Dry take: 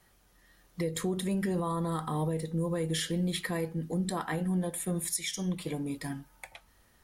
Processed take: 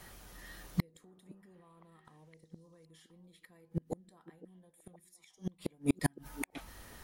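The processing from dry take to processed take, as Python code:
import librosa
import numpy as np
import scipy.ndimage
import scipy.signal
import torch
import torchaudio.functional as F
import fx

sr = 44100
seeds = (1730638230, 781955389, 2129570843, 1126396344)

y = fx.gate_flip(x, sr, shuts_db=-26.0, range_db=-41)
y = fx.echo_stepped(y, sr, ms=512, hz=330.0, octaves=1.4, feedback_pct=70, wet_db=-11.5)
y = y * 10.0 ** (11.5 / 20.0)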